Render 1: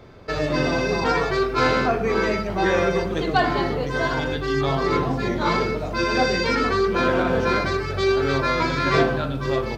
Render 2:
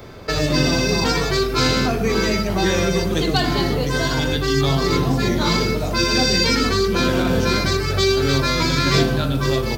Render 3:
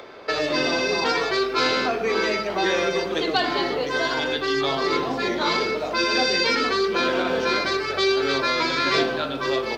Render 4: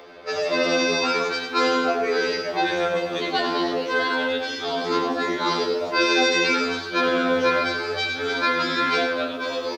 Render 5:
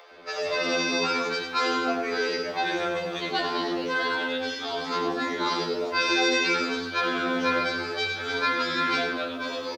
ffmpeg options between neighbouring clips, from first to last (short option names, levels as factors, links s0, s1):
-filter_complex "[0:a]aemphasis=mode=production:type=50kf,acrossover=split=300|3000[s0][s1][s2];[s1]acompressor=threshold=0.0282:ratio=4[s3];[s0][s3][s2]amix=inputs=3:normalize=0,volume=2.24"
-filter_complex "[0:a]acompressor=mode=upward:threshold=0.0141:ratio=2.5,acrossover=split=310 4800:gain=0.0631 1 0.1[s0][s1][s2];[s0][s1][s2]amix=inputs=3:normalize=0"
-filter_complex "[0:a]asplit=2[s0][s1];[s1]aecho=0:1:96|244:0.398|0.141[s2];[s0][s2]amix=inputs=2:normalize=0,afftfilt=real='re*2*eq(mod(b,4),0)':imag='im*2*eq(mod(b,4),0)':win_size=2048:overlap=0.75"
-filter_complex "[0:a]acrossover=split=490[s0][s1];[s0]adelay=110[s2];[s2][s1]amix=inputs=2:normalize=0,volume=0.708"